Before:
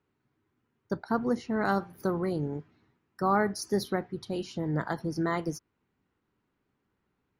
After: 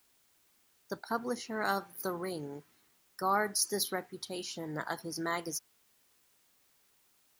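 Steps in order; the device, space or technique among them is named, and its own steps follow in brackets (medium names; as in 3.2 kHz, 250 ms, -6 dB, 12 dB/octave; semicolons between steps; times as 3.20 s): turntable without a phono preamp (RIAA curve recording; white noise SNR 32 dB); trim -3 dB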